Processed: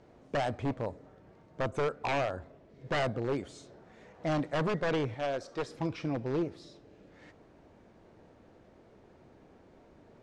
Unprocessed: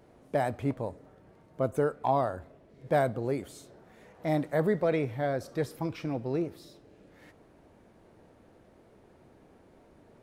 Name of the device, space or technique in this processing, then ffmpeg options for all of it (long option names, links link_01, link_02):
synthesiser wavefolder: -filter_complex "[0:a]aeval=exprs='0.0631*(abs(mod(val(0)/0.0631+3,4)-2)-1)':channel_layout=same,lowpass=frequency=7300:width=0.5412,lowpass=frequency=7300:width=1.3066,asettb=1/sr,asplit=3[link_01][link_02][link_03];[link_01]atrim=end=5.144[link_04];[link_02]atrim=start=5.14:end=5.69,asetpts=PTS-STARTPTS,afade=type=in:duration=0.004:curve=qsin,afade=type=out:start_time=0.546:duration=0.004:curve=qsin,equalizer=frequency=110:width_type=o:width=2.3:gain=-11.5[link_05];[link_03]atrim=start=5.686[link_06];[link_04][link_05]acrossfade=duration=0.004:curve1=hsin:curve2=qsin[link_07];[link_07][link_06]acrossfade=duration=0.004:curve1=qsin:curve2=hsin"